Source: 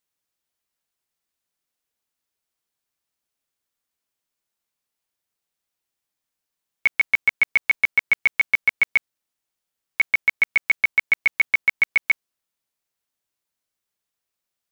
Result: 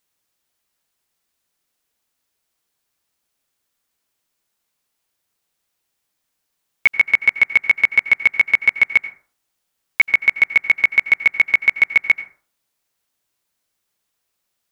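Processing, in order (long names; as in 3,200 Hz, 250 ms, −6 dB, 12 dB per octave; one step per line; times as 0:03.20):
brickwall limiter −13 dBFS, peak gain reduction 3.5 dB
convolution reverb RT60 0.45 s, pre-delay 77 ms, DRR 14 dB
level +8 dB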